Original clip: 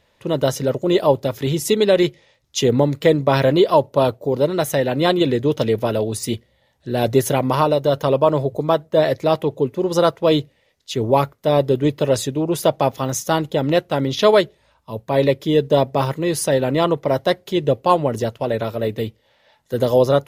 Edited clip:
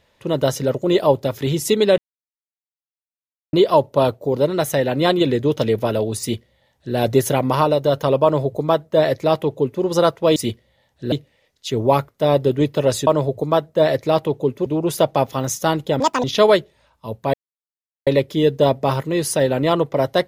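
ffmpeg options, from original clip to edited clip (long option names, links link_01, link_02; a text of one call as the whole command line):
ffmpeg -i in.wav -filter_complex "[0:a]asplit=10[link_01][link_02][link_03][link_04][link_05][link_06][link_07][link_08][link_09][link_10];[link_01]atrim=end=1.98,asetpts=PTS-STARTPTS,afade=type=out:start_time=1.976:duration=0.004:curve=hsin[link_11];[link_02]atrim=start=1.98:end=3.53,asetpts=PTS-STARTPTS,volume=0[link_12];[link_03]atrim=start=3.53:end=10.362,asetpts=PTS-STARTPTS,afade=type=in:duration=0.004:curve=hsin[link_13];[link_04]atrim=start=6.198:end=6.962[link_14];[link_05]atrim=start=10.358:end=12.312[link_15];[link_06]atrim=start=8.238:end=9.832[link_16];[link_07]atrim=start=12.308:end=13.654[link_17];[link_08]atrim=start=13.65:end=14.08,asetpts=PTS-STARTPTS,asetrate=80262,aresample=44100,atrim=end_sample=10419,asetpts=PTS-STARTPTS[link_18];[link_09]atrim=start=14.076:end=15.18,asetpts=PTS-STARTPTS,afade=type=out:start_time=1.1:duration=0.004:curve=hsin,apad=pad_dur=0.73[link_19];[link_10]atrim=start=15.18,asetpts=PTS-STARTPTS,afade=type=in:duration=0.004:curve=hsin[link_20];[link_11][link_12][link_13]concat=n=3:v=0:a=1[link_21];[link_21][link_14]acrossfade=duration=0.004:curve1=hsin:curve2=hsin[link_22];[link_22][link_15]acrossfade=duration=0.004:curve1=hsin:curve2=hsin[link_23];[link_23][link_16]acrossfade=duration=0.004:curve1=hsin:curve2=hsin[link_24];[link_24][link_17]acrossfade=duration=0.004:curve1=hsin:curve2=hsin[link_25];[link_25][link_18]acrossfade=duration=0.004:curve1=hsin:curve2=hsin[link_26];[link_19][link_20]concat=n=2:v=0:a=1[link_27];[link_26][link_27]acrossfade=duration=0.004:curve1=hsin:curve2=hsin" out.wav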